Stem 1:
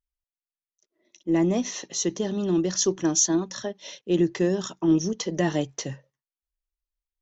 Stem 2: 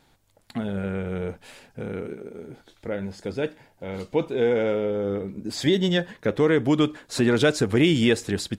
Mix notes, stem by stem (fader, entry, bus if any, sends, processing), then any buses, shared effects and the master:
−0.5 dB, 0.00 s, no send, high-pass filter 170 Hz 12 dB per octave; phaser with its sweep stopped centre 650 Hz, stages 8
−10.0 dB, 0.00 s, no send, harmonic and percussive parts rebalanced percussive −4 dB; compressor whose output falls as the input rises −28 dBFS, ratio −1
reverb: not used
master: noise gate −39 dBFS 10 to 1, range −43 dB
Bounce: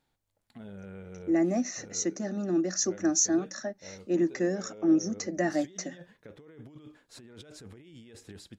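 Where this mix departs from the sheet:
stem 2 −10.0 dB → −19.0 dB
master: missing noise gate −39 dBFS 10 to 1, range −43 dB

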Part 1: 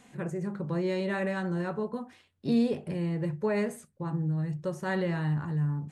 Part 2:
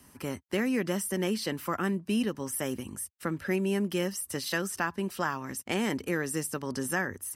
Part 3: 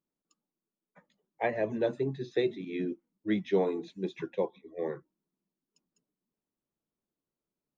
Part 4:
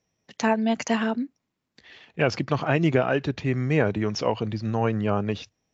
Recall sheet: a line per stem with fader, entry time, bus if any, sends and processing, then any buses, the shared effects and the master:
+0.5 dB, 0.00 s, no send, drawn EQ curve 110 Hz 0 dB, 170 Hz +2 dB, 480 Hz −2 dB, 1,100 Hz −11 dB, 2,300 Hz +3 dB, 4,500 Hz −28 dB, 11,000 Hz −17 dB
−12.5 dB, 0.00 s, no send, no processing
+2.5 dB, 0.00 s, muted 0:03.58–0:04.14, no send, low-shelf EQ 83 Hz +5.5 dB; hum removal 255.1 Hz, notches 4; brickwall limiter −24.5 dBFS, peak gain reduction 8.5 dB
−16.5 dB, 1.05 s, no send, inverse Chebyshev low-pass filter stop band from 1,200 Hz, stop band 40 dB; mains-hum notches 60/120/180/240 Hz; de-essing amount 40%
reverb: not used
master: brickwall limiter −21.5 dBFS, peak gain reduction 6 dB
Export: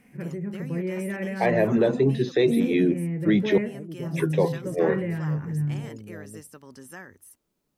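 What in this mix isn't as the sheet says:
stem 3 +2.5 dB → +12.5 dB
master: missing brickwall limiter −21.5 dBFS, peak gain reduction 6 dB

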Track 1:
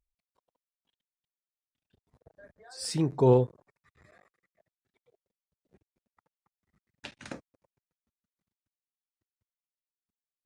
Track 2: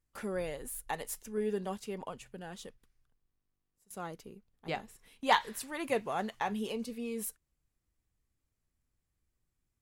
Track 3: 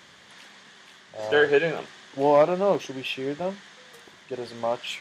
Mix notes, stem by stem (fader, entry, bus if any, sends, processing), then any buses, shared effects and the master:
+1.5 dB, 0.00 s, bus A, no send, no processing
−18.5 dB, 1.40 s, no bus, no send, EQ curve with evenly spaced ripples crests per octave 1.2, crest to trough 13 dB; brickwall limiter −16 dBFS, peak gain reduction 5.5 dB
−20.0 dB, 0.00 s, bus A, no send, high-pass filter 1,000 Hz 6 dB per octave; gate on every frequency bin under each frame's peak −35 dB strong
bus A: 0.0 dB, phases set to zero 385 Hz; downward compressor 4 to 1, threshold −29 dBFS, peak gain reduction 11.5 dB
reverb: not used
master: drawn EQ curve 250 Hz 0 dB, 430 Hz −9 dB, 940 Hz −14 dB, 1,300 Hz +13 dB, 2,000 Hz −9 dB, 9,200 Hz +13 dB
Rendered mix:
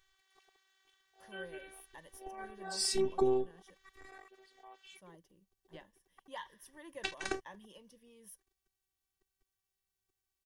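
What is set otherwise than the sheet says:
stem 1 +1.5 dB → +9.0 dB
stem 2: entry 1.40 s → 1.05 s
master: missing drawn EQ curve 250 Hz 0 dB, 430 Hz −9 dB, 940 Hz −14 dB, 1,300 Hz +13 dB, 2,000 Hz −9 dB, 9,200 Hz +13 dB

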